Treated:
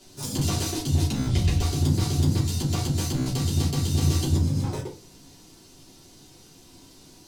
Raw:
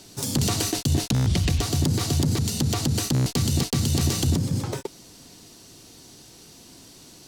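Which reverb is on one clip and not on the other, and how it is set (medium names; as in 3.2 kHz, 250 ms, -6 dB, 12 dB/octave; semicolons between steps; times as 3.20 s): simulated room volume 120 m³, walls furnished, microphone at 3.1 m; trim -10.5 dB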